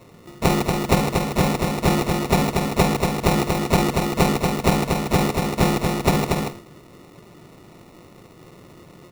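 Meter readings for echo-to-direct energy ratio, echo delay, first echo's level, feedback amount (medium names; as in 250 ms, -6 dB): -4.0 dB, 235 ms, -4.0 dB, no regular repeats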